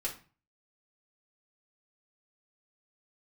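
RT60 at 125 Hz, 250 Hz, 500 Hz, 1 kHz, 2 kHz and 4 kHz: 0.60 s, 0.45 s, 0.35 s, 0.40 s, 0.35 s, 0.30 s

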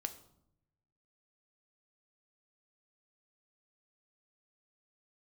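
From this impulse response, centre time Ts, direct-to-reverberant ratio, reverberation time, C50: 8 ms, 7.0 dB, 0.75 s, 13.5 dB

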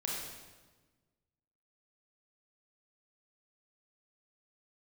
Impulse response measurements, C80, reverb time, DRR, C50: 2.0 dB, 1.3 s, -3.5 dB, -0.5 dB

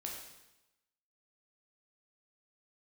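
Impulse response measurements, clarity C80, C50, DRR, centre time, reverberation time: 5.5 dB, 3.0 dB, -1.5 dB, 48 ms, 0.95 s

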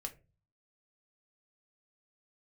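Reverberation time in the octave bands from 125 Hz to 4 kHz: 0.70 s, 0.50 s, 0.35 s, 0.25 s, 0.25 s, 0.15 s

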